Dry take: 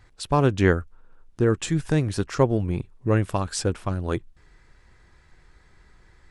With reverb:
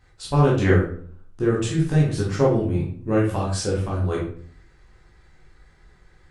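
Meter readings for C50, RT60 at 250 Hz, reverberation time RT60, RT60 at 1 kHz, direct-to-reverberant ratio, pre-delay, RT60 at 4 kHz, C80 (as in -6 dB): 3.5 dB, 0.65 s, 0.50 s, 0.50 s, -5.5 dB, 12 ms, 0.35 s, 9.0 dB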